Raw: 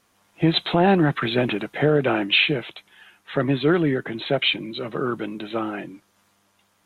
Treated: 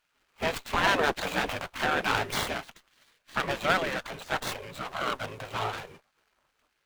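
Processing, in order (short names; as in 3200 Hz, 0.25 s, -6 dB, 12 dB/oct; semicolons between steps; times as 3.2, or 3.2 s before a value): median filter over 25 samples; spectral gate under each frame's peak -15 dB weak; running maximum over 3 samples; gain +7 dB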